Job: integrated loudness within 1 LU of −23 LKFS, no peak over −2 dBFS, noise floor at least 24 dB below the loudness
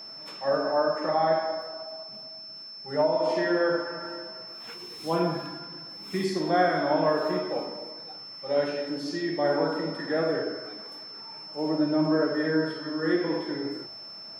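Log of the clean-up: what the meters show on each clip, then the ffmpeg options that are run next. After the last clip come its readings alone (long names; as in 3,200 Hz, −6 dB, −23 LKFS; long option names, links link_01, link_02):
interfering tone 5,300 Hz; level of the tone −40 dBFS; integrated loudness −27.5 LKFS; sample peak −11.5 dBFS; target loudness −23.0 LKFS
→ -af "bandreject=frequency=5300:width=30"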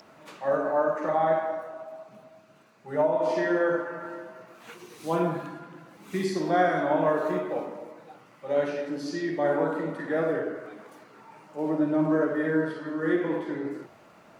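interfering tone none found; integrated loudness −27.5 LKFS; sample peak −12.0 dBFS; target loudness −23.0 LKFS
→ -af "volume=4.5dB"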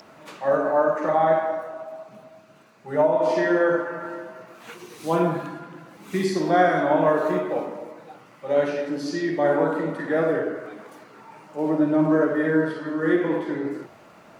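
integrated loudness −23.0 LKFS; sample peak −7.5 dBFS; background noise floor −50 dBFS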